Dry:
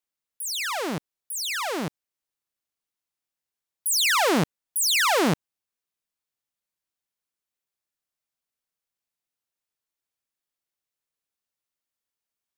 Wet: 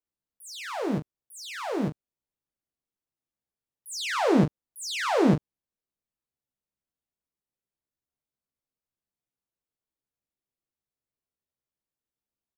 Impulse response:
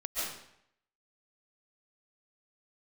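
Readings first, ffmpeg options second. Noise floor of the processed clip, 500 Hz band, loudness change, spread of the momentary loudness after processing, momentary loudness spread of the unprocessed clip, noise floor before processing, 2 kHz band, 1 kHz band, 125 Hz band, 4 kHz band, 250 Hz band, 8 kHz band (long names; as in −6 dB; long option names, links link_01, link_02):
below −85 dBFS, +0.5 dB, −3.5 dB, 16 LU, 13 LU, below −85 dBFS, −8.5 dB, −4.5 dB, +3.0 dB, −10.5 dB, +3.5 dB, −13.5 dB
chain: -filter_complex "[0:a]tiltshelf=frequency=770:gain=8,acrossover=split=8500[link_01][link_02];[link_02]acompressor=threshold=-50dB:ratio=4:attack=1:release=60[link_03];[link_01][link_03]amix=inputs=2:normalize=0,aecho=1:1:15|41:0.631|0.266,volume=-4.5dB"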